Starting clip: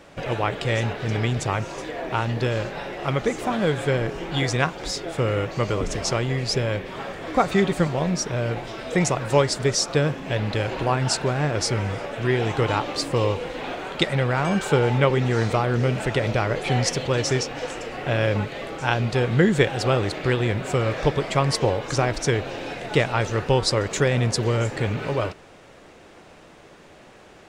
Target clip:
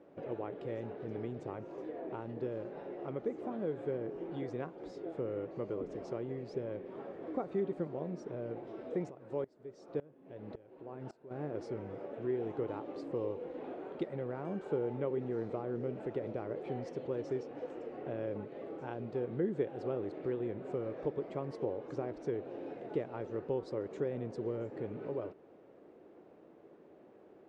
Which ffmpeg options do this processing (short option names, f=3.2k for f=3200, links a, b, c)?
-filter_complex "[0:a]acompressor=threshold=-32dB:ratio=1.5,bandpass=f=360:t=q:w=1.6:csg=0,asplit=3[a][b][c];[a]afade=t=out:st=9.09:d=0.02[d];[b]aeval=exprs='val(0)*pow(10,-22*if(lt(mod(-1.8*n/s,1),2*abs(-1.8)/1000),1-mod(-1.8*n/s,1)/(2*abs(-1.8)/1000),(mod(-1.8*n/s,1)-2*abs(-1.8)/1000)/(1-2*abs(-1.8)/1000))/20)':c=same,afade=t=in:st=9.09:d=0.02,afade=t=out:st=11.3:d=0.02[e];[c]afade=t=in:st=11.3:d=0.02[f];[d][e][f]amix=inputs=3:normalize=0,volume=-5dB"